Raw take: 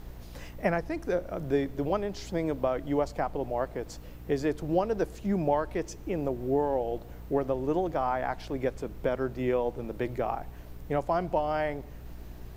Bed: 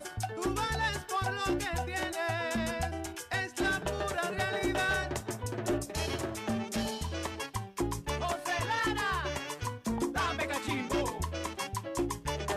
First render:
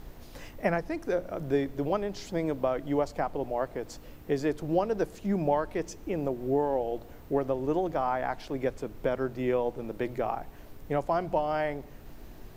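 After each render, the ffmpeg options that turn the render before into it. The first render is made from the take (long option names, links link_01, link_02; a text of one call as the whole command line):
ffmpeg -i in.wav -af "bandreject=frequency=60:width_type=h:width=4,bandreject=frequency=120:width_type=h:width=4,bandreject=frequency=180:width_type=h:width=4" out.wav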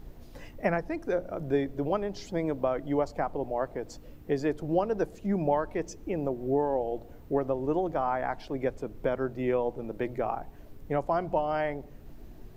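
ffmpeg -i in.wav -af "afftdn=noise_reduction=7:noise_floor=-48" out.wav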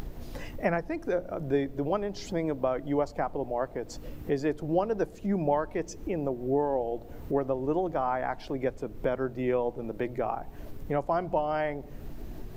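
ffmpeg -i in.wav -af "acompressor=mode=upward:threshold=-29dB:ratio=2.5" out.wav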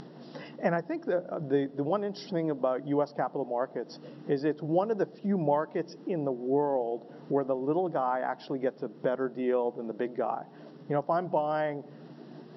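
ffmpeg -i in.wav -af "afftfilt=real='re*between(b*sr/4096,130,5700)':imag='im*between(b*sr/4096,130,5700)':win_size=4096:overlap=0.75,equalizer=frequency=2300:width_type=o:width=0.21:gain=-13.5" out.wav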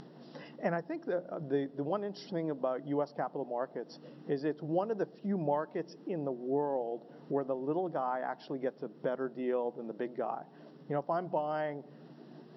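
ffmpeg -i in.wav -af "volume=-5dB" out.wav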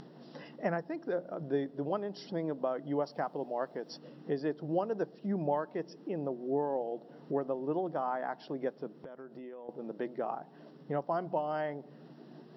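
ffmpeg -i in.wav -filter_complex "[0:a]asettb=1/sr,asplit=3[link_01][link_02][link_03];[link_01]atrim=end=3.044[link_04];[link_02]atrim=start=3.04:end=3.98,asetpts=PTS-STARTPTS,afade=type=in:duration=0.004:curve=qsin,afade=type=out:start_time=0.936:duration=0.004:curve=qsin,highshelf=frequency=2500:gain=8[link_05];[link_03]atrim=start=3.976[link_06];[link_04][link_05]acrossfade=duration=0.004:curve1=hsin:curve2=qsin[link_07];[link_07][link_06]acrossfade=duration=0.004:curve1=qsin:curve2=hsin,asettb=1/sr,asplit=3[link_08][link_09][link_10];[link_08]atrim=end=9.034[link_11];[link_09]atrim=start=9.03:end=9.69,asetpts=PTS-STARTPTS,afade=type=in:duration=0.004:curve=qsin,afade=type=out:start_time=0.656:duration=0.004:curve=qsin,acompressor=threshold=-43dB:ratio=8:attack=3.2:release=140:knee=1:detection=peak[link_12];[link_10]atrim=start=9.686[link_13];[link_11][link_12]acrossfade=duration=0.004:curve1=hsin:curve2=qsin[link_14];[link_14][link_13]acrossfade=duration=0.004:curve1=qsin:curve2=hsin" out.wav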